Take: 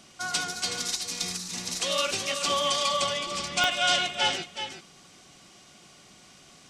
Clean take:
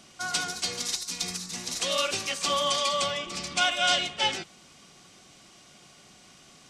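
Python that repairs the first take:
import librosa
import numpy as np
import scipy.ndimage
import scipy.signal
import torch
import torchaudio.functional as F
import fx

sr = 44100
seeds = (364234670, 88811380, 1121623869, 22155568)

y = fx.fix_declick_ar(x, sr, threshold=10.0)
y = fx.fix_echo_inverse(y, sr, delay_ms=372, level_db=-8.5)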